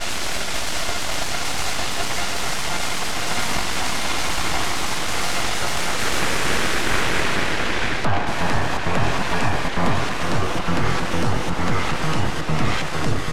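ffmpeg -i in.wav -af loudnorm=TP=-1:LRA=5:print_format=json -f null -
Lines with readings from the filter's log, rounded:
"input_i" : "-22.9",
"input_tp" : "-4.0",
"input_lra" : "1.9",
"input_thresh" : "-32.9",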